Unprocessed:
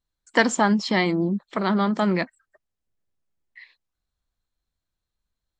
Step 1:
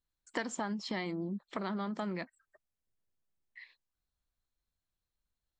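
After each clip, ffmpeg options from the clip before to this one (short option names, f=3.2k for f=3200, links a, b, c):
-af "acompressor=threshold=-29dB:ratio=4,volume=-6dB"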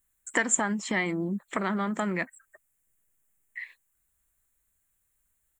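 -af "firequalizer=gain_entry='entry(880,0);entry(1900,7);entry(4800,-11);entry(7300,14)':delay=0.05:min_phase=1,volume=7dB"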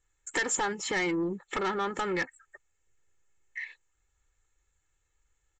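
-af "aecho=1:1:2.3:0.78,aresample=16000,asoftclip=type=tanh:threshold=-26.5dB,aresample=44100,volume=2dB"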